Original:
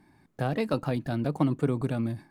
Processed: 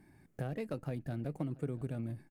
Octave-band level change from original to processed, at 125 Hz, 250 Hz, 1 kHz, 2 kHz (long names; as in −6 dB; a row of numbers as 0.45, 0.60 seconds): −8.5, −12.0, −15.5, −12.5 decibels